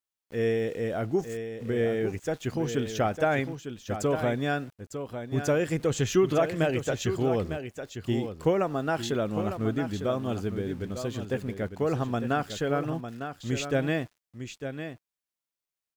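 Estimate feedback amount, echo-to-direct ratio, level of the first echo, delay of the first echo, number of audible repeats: no steady repeat, -9.0 dB, -9.0 dB, 0.903 s, 1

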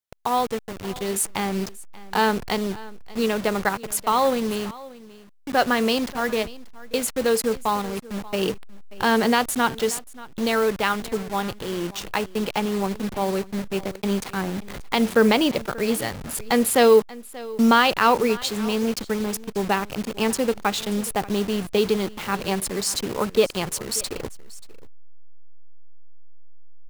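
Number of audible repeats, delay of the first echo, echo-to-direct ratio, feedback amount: 1, 0.584 s, -19.5 dB, no steady repeat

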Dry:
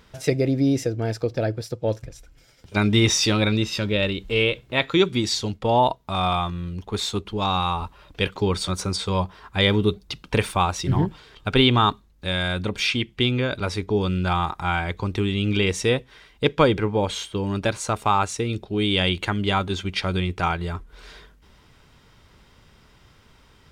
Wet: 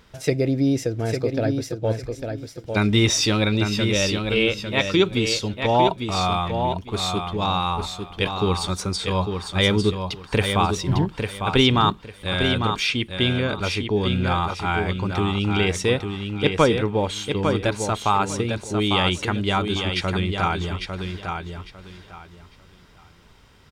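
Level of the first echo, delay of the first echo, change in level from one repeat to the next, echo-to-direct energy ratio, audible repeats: -6.0 dB, 0.851 s, -13.0 dB, -6.0 dB, 3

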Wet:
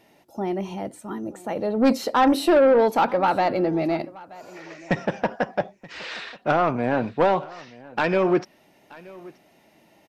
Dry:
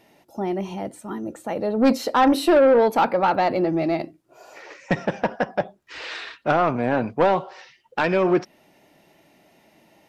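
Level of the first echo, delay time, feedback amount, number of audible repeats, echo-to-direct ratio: -21.5 dB, 0.927 s, no steady repeat, 1, -21.5 dB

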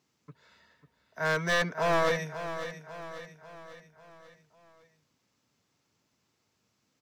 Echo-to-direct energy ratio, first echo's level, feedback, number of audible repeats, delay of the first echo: -9.5 dB, -11.0 dB, 50%, 4, 0.545 s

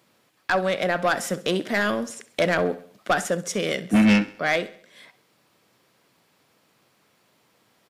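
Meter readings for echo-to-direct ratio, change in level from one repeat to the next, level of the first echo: -16.5 dB, -6.5 dB, -17.5 dB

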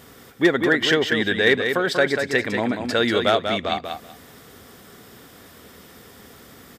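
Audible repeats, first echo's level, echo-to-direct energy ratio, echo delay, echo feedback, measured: 2, -6.5 dB, -6.5 dB, 0.19 s, 18%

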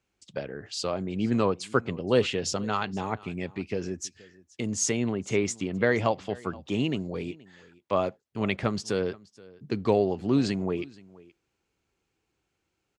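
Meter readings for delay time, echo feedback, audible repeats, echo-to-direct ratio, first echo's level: 0.475 s, no steady repeat, 1, -22.5 dB, -22.5 dB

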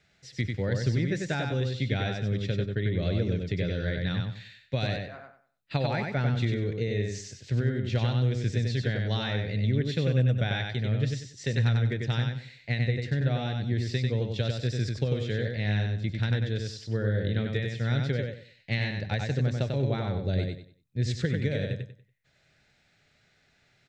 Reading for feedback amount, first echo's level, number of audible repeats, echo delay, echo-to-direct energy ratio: 27%, -4.0 dB, 3, 95 ms, -3.5 dB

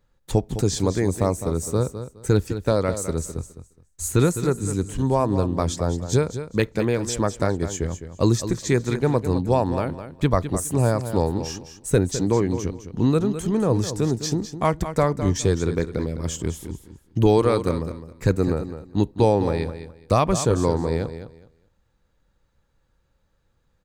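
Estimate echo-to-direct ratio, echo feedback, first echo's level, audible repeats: -11.0 dB, 21%, -11.0 dB, 2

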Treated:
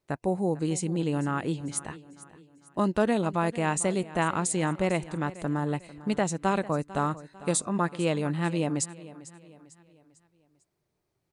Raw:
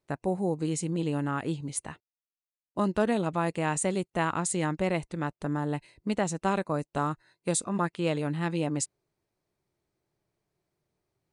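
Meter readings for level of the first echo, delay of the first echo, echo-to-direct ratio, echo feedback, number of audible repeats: -17.5 dB, 0.448 s, -16.5 dB, 43%, 3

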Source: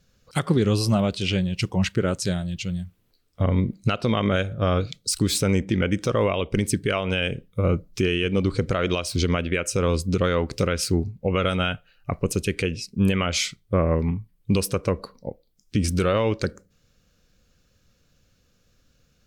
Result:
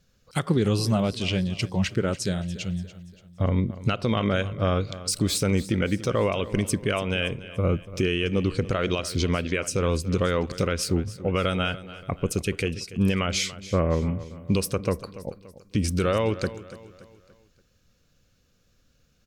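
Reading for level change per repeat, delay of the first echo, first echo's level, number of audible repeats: -7.0 dB, 0.287 s, -16.0 dB, 3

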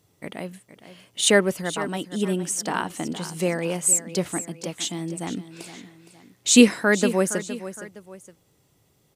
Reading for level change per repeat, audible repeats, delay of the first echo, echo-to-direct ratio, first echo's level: -7.5 dB, 2, 0.465 s, -13.0 dB, -13.5 dB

